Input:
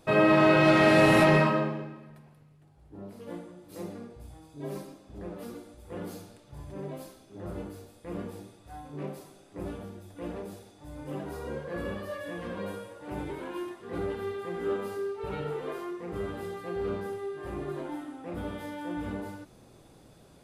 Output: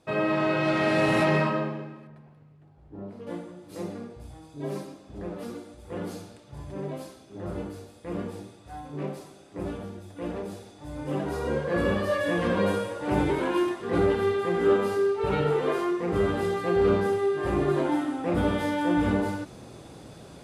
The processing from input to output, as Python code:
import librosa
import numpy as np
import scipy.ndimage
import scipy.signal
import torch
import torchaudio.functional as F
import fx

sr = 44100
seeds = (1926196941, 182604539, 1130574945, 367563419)

y = fx.lowpass(x, sr, hz=1800.0, slope=6, at=(2.07, 3.27))
y = scipy.signal.sosfilt(scipy.signal.butter(2, 9700.0, 'lowpass', fs=sr, output='sos'), y)
y = fx.rider(y, sr, range_db=10, speed_s=2.0)
y = scipy.signal.sosfilt(scipy.signal.butter(2, 54.0, 'highpass', fs=sr, output='sos'), y)
y = y * 10.0 ** (3.5 / 20.0)